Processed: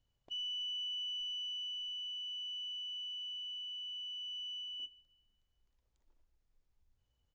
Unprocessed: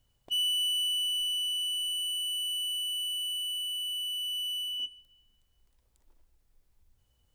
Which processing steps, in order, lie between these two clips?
treble shelf 5.5 kHz -4 dB; hard clipper -29.5 dBFS, distortion -21 dB; resampled via 16 kHz; trim -8.5 dB

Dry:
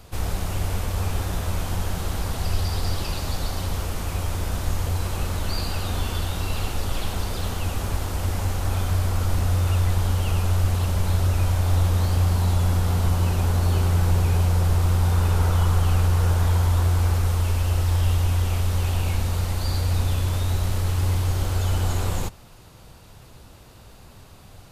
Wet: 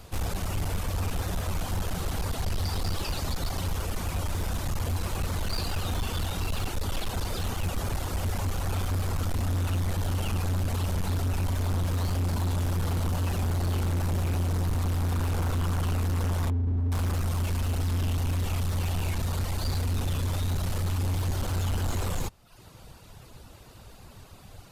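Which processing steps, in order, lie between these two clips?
16.50–16.92 s: spectral contrast enhancement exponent 1.7; reverb removal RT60 0.67 s; overload inside the chain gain 24.5 dB

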